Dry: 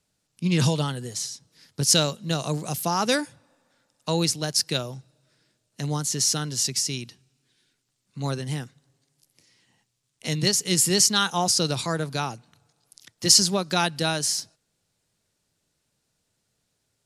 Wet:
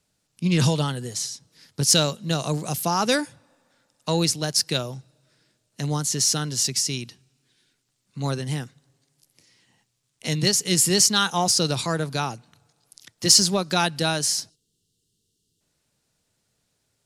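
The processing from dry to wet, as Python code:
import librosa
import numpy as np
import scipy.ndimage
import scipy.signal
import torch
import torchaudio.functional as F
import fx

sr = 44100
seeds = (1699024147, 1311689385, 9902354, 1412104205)

p1 = fx.spec_box(x, sr, start_s=14.49, length_s=1.12, low_hz=480.0, high_hz=2700.0, gain_db=-23)
p2 = 10.0 ** (-19.0 / 20.0) * np.tanh(p1 / 10.0 ** (-19.0 / 20.0))
y = p1 + (p2 * librosa.db_to_amplitude(-11.5))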